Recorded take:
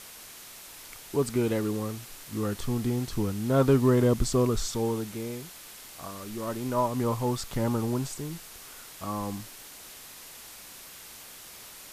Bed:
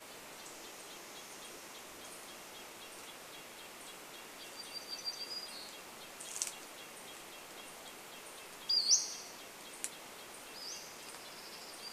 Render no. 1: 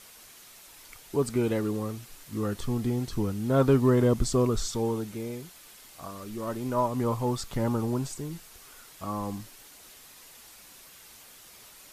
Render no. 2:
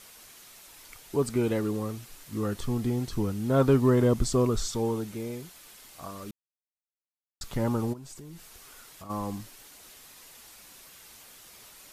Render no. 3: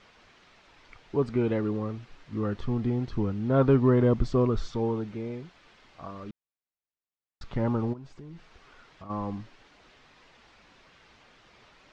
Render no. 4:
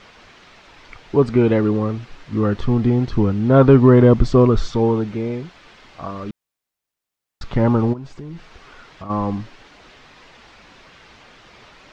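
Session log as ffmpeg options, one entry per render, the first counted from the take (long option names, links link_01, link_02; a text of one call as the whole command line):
ffmpeg -i in.wav -af "afftdn=noise_reduction=6:noise_floor=-47" out.wav
ffmpeg -i in.wav -filter_complex "[0:a]asplit=3[link_01][link_02][link_03];[link_01]afade=type=out:start_time=7.92:duration=0.02[link_04];[link_02]acompressor=threshold=-41dB:ratio=6:attack=3.2:release=140:knee=1:detection=peak,afade=type=in:start_time=7.92:duration=0.02,afade=type=out:start_time=9.09:duration=0.02[link_05];[link_03]afade=type=in:start_time=9.09:duration=0.02[link_06];[link_04][link_05][link_06]amix=inputs=3:normalize=0,asplit=3[link_07][link_08][link_09];[link_07]atrim=end=6.31,asetpts=PTS-STARTPTS,afade=type=out:start_time=6.306:duration=0.004:curve=hsin[link_10];[link_08]atrim=start=6.31:end=7.41,asetpts=PTS-STARTPTS,volume=0[link_11];[link_09]atrim=start=7.41,asetpts=PTS-STARTPTS,afade=type=in:duration=0.004:curve=hsin[link_12];[link_10][link_11][link_12]concat=n=3:v=0:a=1" out.wav
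ffmpeg -i in.wav -af "lowpass=frequency=5900:width=0.5412,lowpass=frequency=5900:width=1.3066,bass=frequency=250:gain=1,treble=frequency=4000:gain=-15" out.wav
ffmpeg -i in.wav -af "volume=11dB,alimiter=limit=-1dB:level=0:latency=1" out.wav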